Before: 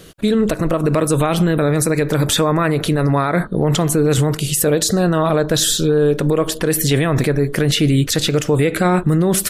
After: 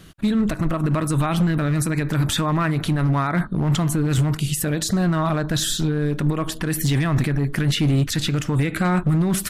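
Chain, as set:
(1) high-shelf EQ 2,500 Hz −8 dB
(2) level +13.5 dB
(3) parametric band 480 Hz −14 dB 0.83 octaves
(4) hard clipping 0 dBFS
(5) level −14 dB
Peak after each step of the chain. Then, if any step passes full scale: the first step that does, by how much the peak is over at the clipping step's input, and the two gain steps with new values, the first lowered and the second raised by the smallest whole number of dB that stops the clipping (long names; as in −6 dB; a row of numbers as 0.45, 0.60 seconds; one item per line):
−6.5, +7.0, +6.0, 0.0, −14.0 dBFS
step 2, 6.0 dB
step 2 +7.5 dB, step 5 −8 dB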